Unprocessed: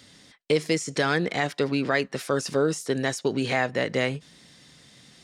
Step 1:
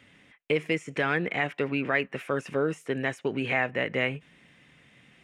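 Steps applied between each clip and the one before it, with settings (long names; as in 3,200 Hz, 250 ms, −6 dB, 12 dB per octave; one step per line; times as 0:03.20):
high shelf with overshoot 3,400 Hz −10 dB, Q 3
level −4 dB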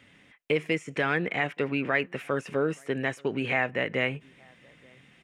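slap from a distant wall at 150 metres, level −28 dB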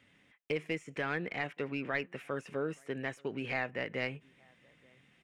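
stylus tracing distortion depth 0.025 ms
level −8.5 dB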